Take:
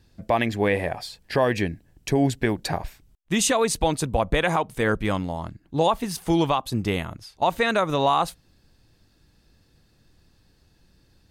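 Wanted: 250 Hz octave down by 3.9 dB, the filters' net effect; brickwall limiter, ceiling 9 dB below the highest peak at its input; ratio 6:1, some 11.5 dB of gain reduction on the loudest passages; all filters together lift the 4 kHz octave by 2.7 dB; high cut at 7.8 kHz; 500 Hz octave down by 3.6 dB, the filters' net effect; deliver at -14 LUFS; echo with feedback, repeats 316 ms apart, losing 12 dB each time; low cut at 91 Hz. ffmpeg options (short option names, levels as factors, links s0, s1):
-af "highpass=91,lowpass=7800,equalizer=f=250:t=o:g=-4,equalizer=f=500:t=o:g=-3.5,equalizer=f=4000:t=o:g=3.5,acompressor=threshold=0.0282:ratio=6,alimiter=level_in=1.41:limit=0.0631:level=0:latency=1,volume=0.708,aecho=1:1:316|632|948:0.251|0.0628|0.0157,volume=15.8"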